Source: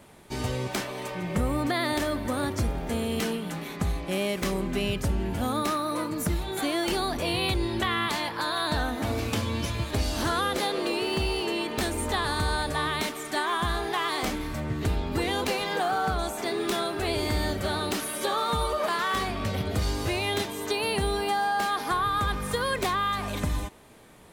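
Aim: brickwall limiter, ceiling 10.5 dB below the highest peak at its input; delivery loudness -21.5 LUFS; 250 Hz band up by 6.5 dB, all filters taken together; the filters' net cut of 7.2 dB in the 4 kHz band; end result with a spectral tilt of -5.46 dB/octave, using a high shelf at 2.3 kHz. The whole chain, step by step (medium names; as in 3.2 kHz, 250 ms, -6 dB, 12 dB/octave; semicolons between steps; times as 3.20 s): peaking EQ 250 Hz +8.5 dB; treble shelf 2.3 kHz -4.5 dB; peaking EQ 4 kHz -5 dB; trim +8.5 dB; peak limiter -12.5 dBFS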